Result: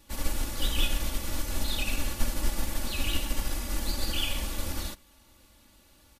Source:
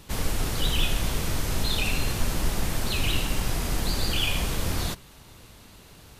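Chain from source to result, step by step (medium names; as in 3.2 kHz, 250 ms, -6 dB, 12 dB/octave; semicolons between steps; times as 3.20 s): treble shelf 8.1 kHz +5 dB; comb 3.5 ms, depth 99%; upward expansion 1.5:1, over -28 dBFS; trim -5 dB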